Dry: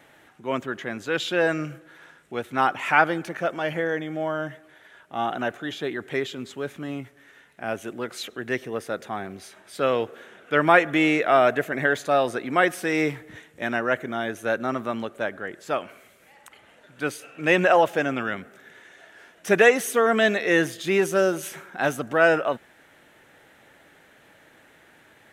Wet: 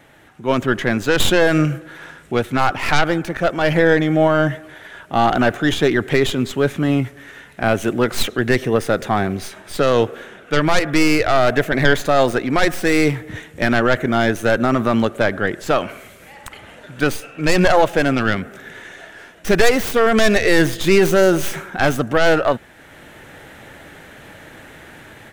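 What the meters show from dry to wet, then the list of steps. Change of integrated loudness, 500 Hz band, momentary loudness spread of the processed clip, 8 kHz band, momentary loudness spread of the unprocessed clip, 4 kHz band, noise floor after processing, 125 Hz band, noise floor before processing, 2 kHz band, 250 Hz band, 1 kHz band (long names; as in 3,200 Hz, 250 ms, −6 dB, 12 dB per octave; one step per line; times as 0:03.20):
+6.5 dB, +6.5 dB, 11 LU, +8.5 dB, 16 LU, +10.0 dB, −44 dBFS, +14.0 dB, −56 dBFS, +4.5 dB, +9.5 dB, +5.0 dB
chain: stylus tracing distortion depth 0.23 ms
automatic gain control gain up to 9.5 dB
brickwall limiter −9 dBFS, peak gain reduction 8 dB
low-shelf EQ 140 Hz +11.5 dB
level +3.5 dB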